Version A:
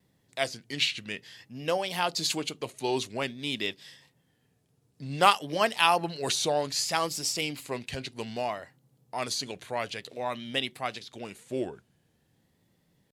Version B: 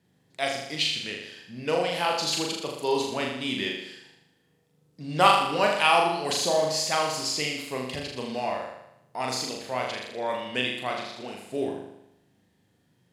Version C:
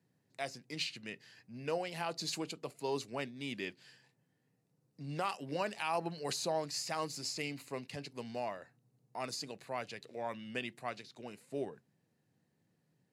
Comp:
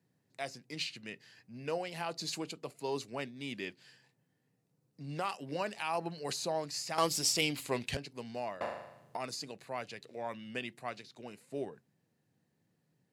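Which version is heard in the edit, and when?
C
6.98–7.97 from A
8.61–9.17 from B

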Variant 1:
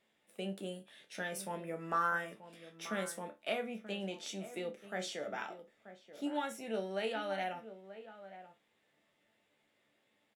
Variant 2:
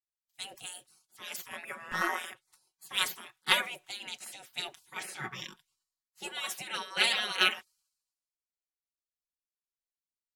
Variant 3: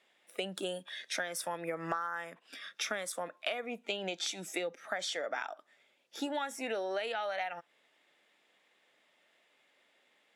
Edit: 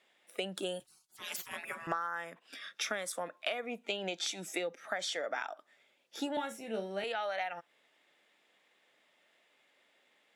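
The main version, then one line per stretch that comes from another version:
3
0.8–1.87 from 2
6.37–7.04 from 1

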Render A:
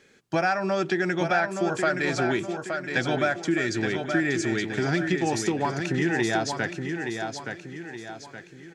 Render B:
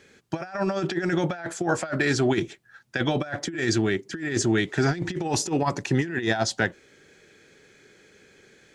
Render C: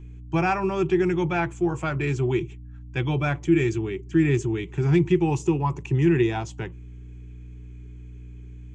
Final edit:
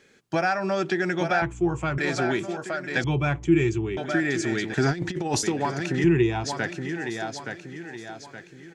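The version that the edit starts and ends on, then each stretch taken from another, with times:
A
1.42–1.98 from C
3.04–3.97 from C
4.74–5.43 from B
6.04–6.44 from C

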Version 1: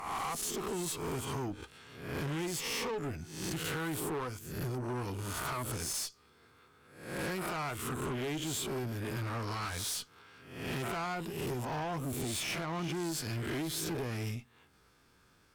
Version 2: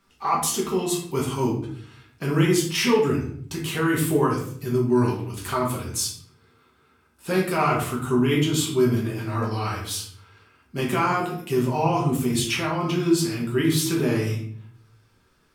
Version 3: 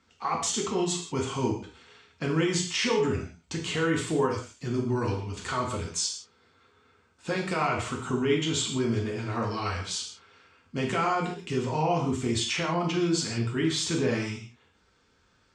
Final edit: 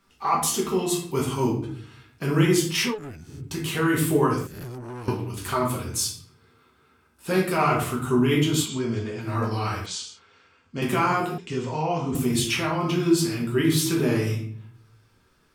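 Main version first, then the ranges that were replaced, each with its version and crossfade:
2
2.89–3.34 from 1, crossfade 0.16 s
4.47–5.08 from 1
8.66–9.24 from 3, crossfade 0.10 s
9.86–10.82 from 3
11.38–12.15 from 3

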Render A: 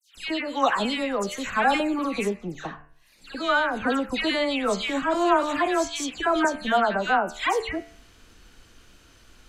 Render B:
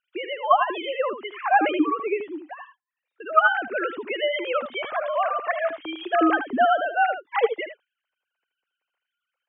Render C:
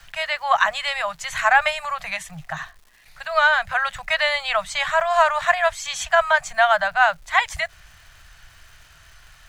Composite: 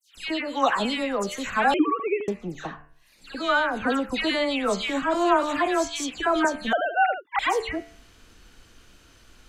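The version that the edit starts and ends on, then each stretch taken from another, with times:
A
1.74–2.28 from B
6.73–7.39 from B
not used: C

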